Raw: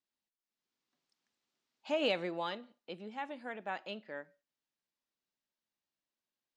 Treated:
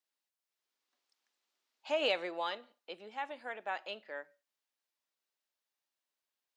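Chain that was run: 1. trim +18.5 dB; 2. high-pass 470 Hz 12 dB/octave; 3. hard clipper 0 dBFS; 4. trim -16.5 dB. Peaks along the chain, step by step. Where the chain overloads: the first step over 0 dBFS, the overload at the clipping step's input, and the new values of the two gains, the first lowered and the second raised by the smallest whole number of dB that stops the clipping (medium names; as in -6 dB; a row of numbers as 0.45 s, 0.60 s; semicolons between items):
-1.5 dBFS, -2.5 dBFS, -2.5 dBFS, -19.0 dBFS; nothing clips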